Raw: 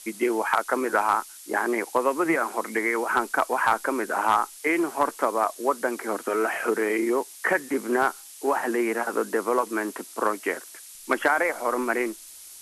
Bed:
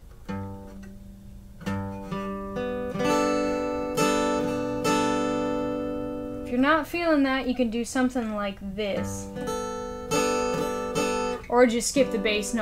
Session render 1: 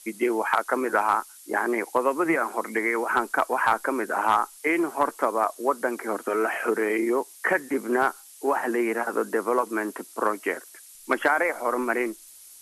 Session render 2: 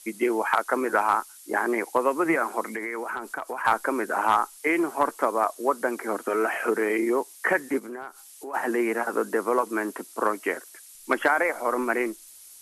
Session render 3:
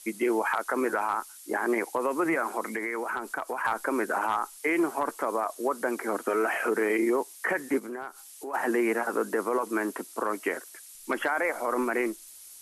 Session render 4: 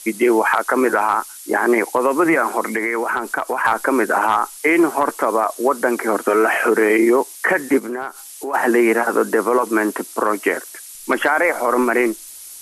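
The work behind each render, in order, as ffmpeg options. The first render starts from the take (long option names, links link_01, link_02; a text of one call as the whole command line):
ffmpeg -i in.wav -af "afftdn=noise_reduction=6:noise_floor=-45" out.wav
ffmpeg -i in.wav -filter_complex "[0:a]asettb=1/sr,asplit=3[link_01][link_02][link_03];[link_01]atrim=end=2.744[link_04];[link_02]atrim=start=2.74:end=3.65,asetpts=PTS-STARTPTS,afade=type=in:duration=0.004:curve=qsin,afade=type=out:start_time=0.906:duration=0.004:curve=qsin,acompressor=threshold=-28dB:ratio=5:attack=3.2:release=140:knee=1:detection=peak[link_05];[link_03]atrim=start=3.646[link_06];[link_04][link_05]acrossfade=duration=0.004:curve1=hsin:curve2=qsin[link_07];[link_07][link_06]acrossfade=duration=0.004:curve1=qsin:curve2=hsin,asplit=3[link_08][link_09][link_10];[link_08]afade=type=out:start_time=7.78:duration=0.02[link_11];[link_09]acompressor=threshold=-38dB:ratio=3:attack=3.2:release=140:knee=1:detection=peak,afade=type=in:start_time=7.78:duration=0.02,afade=type=out:start_time=8.53:duration=0.02[link_12];[link_10]afade=type=in:start_time=8.53:duration=0.02[link_13];[link_11][link_12][link_13]amix=inputs=3:normalize=0" out.wav
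ffmpeg -i in.wav -af "alimiter=limit=-17dB:level=0:latency=1:release=46" out.wav
ffmpeg -i in.wav -af "volume=11dB" out.wav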